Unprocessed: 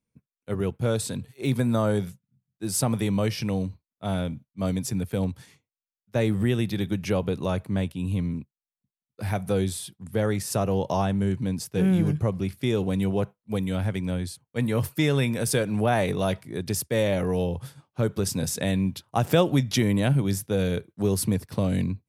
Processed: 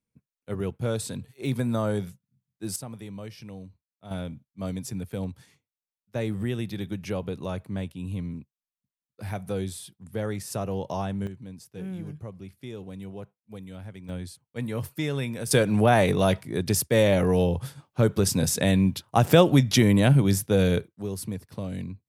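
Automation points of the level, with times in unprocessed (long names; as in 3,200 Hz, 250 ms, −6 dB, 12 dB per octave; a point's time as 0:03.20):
−3 dB
from 0:02.76 −14.5 dB
from 0:04.11 −5.5 dB
from 0:11.27 −14 dB
from 0:14.09 −6 dB
from 0:15.51 +3.5 dB
from 0:20.88 −8.5 dB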